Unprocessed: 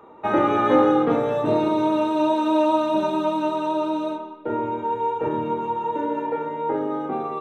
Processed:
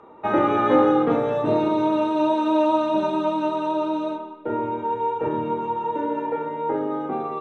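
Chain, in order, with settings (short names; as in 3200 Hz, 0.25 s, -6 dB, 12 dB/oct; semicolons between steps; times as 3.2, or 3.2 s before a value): air absorption 63 m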